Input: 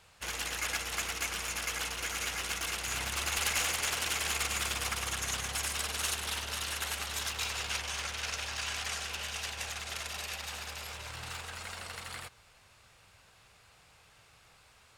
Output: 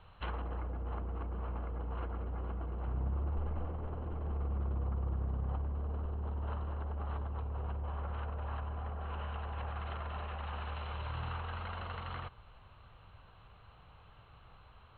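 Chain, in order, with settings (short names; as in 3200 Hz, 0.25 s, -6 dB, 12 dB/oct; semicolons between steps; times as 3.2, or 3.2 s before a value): treble ducked by the level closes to 450 Hz, closed at -31.5 dBFS; rippled Chebyshev low-pass 4200 Hz, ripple 9 dB; tilt -3.5 dB/oct; gain +5.5 dB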